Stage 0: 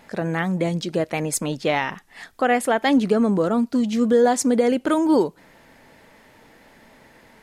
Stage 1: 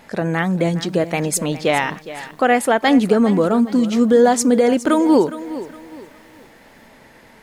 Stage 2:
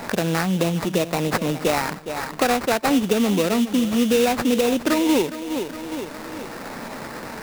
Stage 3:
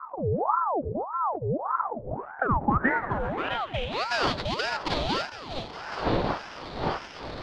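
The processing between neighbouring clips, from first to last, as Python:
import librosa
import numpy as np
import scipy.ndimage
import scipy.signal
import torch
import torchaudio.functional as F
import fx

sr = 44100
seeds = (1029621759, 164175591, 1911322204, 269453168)

y1 = fx.echo_crushed(x, sr, ms=413, feedback_pct=35, bits=8, wet_db=-14.5)
y1 = y1 * librosa.db_to_amplitude(4.0)
y2 = fx.sample_hold(y1, sr, seeds[0], rate_hz=3200.0, jitter_pct=20)
y2 = fx.band_squash(y2, sr, depth_pct=70)
y2 = y2 * librosa.db_to_amplitude(-4.5)
y3 = fx.dmg_wind(y2, sr, seeds[1], corner_hz=470.0, level_db=-24.0)
y3 = fx.filter_sweep_lowpass(y3, sr, from_hz=150.0, to_hz=4000.0, start_s=1.7, end_s=4.08, q=5.4)
y3 = fx.ring_lfo(y3, sr, carrier_hz=730.0, swing_pct=65, hz=1.7)
y3 = y3 * librosa.db_to_amplitude(-8.5)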